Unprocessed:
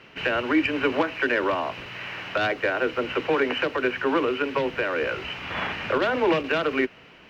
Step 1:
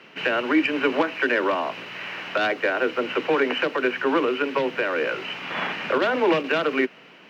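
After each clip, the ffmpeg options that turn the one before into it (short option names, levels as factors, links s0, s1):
-af "highpass=f=160:w=0.5412,highpass=f=160:w=1.3066,volume=1.19"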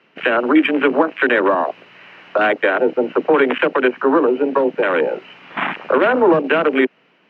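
-filter_complex "[0:a]afwtdn=0.0631,aemphasis=mode=reproduction:type=cd,asplit=2[s0][s1];[s1]alimiter=limit=0.158:level=0:latency=1:release=211,volume=0.794[s2];[s0][s2]amix=inputs=2:normalize=0,volume=1.58"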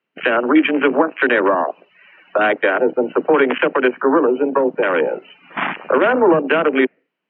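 -af "afftdn=nr=22:nf=-38"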